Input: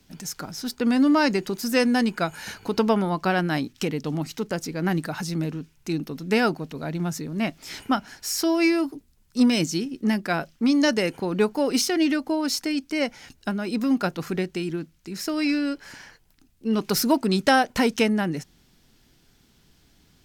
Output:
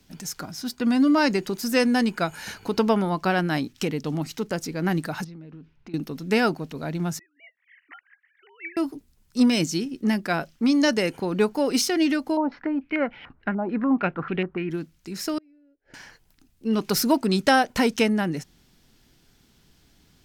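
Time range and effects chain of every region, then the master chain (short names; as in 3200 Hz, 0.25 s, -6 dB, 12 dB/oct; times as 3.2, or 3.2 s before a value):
0.43–1.18 notch 540 Hz, Q 14 + notch comb 440 Hz
5.24–5.94 air absorption 300 m + compressor 16:1, threshold -38 dBFS
7.19–8.77 sine-wave speech + band-pass 1900 Hz, Q 8.5
12.37–14.71 air absorption 280 m + stepped low-pass 6.8 Hz 840–2900 Hz
15.38–15.94 LPF 1100 Hz + flipped gate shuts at -31 dBFS, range -30 dB + fixed phaser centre 440 Hz, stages 4
whole clip: dry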